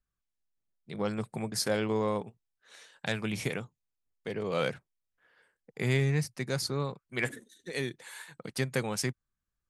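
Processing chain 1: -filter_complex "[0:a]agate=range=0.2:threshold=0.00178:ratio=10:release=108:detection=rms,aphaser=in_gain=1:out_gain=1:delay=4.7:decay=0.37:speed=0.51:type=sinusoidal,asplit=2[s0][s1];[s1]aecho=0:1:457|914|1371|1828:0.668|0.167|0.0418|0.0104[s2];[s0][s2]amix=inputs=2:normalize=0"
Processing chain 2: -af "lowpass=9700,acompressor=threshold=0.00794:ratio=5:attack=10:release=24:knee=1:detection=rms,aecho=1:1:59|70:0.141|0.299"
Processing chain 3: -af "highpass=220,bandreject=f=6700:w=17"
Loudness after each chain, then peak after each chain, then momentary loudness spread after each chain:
-30.5 LUFS, -43.5 LUFS, -34.5 LUFS; -13.0 dBFS, -25.5 dBFS, -16.0 dBFS; 11 LU, 11 LU, 15 LU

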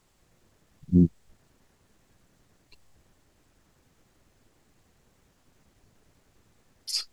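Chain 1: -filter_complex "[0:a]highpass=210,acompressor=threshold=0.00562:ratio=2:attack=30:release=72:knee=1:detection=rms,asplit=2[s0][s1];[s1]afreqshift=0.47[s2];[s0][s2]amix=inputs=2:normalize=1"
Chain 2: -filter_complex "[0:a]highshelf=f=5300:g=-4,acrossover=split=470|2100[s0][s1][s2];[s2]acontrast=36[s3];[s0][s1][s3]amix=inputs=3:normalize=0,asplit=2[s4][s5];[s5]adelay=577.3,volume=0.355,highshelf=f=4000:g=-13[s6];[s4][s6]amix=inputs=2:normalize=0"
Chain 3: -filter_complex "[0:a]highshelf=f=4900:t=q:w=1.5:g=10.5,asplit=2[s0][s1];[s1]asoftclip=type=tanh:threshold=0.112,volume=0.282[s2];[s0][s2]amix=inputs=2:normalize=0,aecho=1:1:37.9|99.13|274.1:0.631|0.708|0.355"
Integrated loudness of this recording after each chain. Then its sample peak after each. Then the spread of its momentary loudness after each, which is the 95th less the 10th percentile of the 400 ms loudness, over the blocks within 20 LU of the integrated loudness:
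-42.5 LUFS, -27.0 LUFS, -22.0 LUFS; -25.5 dBFS, -8.0 dBFS, -6.0 dBFS; 12 LU, 14 LU, 15 LU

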